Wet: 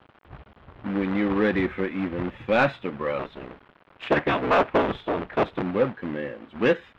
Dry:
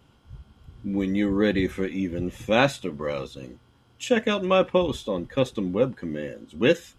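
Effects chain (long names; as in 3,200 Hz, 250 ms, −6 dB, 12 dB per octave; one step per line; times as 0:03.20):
0:03.19–0:05.63: sub-harmonics by changed cycles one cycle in 3, inverted
parametric band 490 Hz −5.5 dB 2.4 octaves
log-companded quantiser 4 bits
high-frequency loss of the air 480 metres
mid-hump overdrive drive 18 dB, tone 1,700 Hz, clips at −6.5 dBFS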